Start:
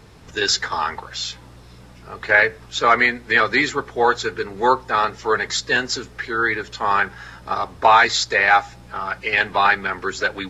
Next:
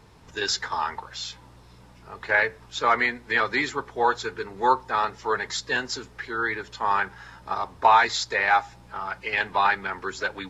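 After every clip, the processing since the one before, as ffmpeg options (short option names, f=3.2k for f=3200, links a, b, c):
-af "equalizer=f=940:t=o:w=0.32:g=6.5,volume=-7dB"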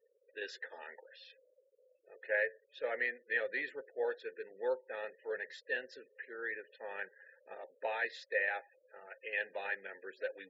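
-filter_complex "[0:a]asplit=3[a][b][c];[a]bandpass=f=530:t=q:w=8,volume=0dB[d];[b]bandpass=f=1.84k:t=q:w=8,volume=-6dB[e];[c]bandpass=f=2.48k:t=q:w=8,volume=-9dB[f];[d][e][f]amix=inputs=3:normalize=0,afftfilt=real='re*gte(hypot(re,im),0.00178)':imag='im*gte(hypot(re,im),0.00178)':win_size=1024:overlap=0.75,volume=-2dB"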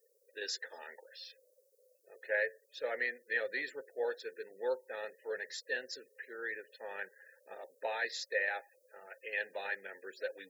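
-af "aexciter=amount=7.5:drive=3.6:freq=4.4k"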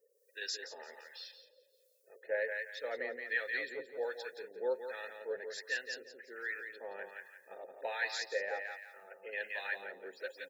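-filter_complex "[0:a]asplit=2[a][b];[b]aecho=0:1:173|346|519|692:0.501|0.14|0.0393|0.011[c];[a][c]amix=inputs=2:normalize=0,acrossover=split=910[d][e];[d]aeval=exprs='val(0)*(1-0.7/2+0.7/2*cos(2*PI*1.3*n/s))':c=same[f];[e]aeval=exprs='val(0)*(1-0.7/2-0.7/2*cos(2*PI*1.3*n/s))':c=same[g];[f][g]amix=inputs=2:normalize=0,volume=1.5dB"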